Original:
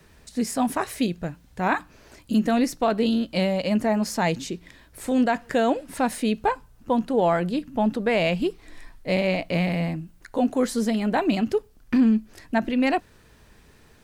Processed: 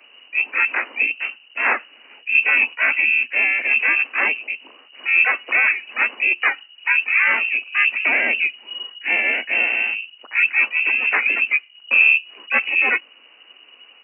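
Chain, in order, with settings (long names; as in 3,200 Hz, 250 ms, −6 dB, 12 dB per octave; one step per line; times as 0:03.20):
pitch-shifted copies added +5 semitones 0 dB, +7 semitones −7 dB, +12 semitones −4 dB
tape wow and flutter 26 cents
voice inversion scrambler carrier 2,900 Hz
Butterworth high-pass 220 Hz 96 dB per octave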